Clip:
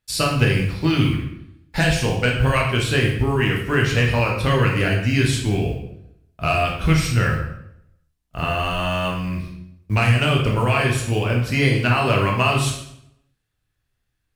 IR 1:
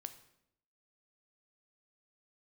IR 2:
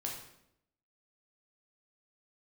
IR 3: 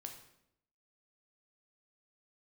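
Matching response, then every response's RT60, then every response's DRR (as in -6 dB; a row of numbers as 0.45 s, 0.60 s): 2; 0.75 s, 0.75 s, 0.75 s; 9.0 dB, -1.5 dB, 3.0 dB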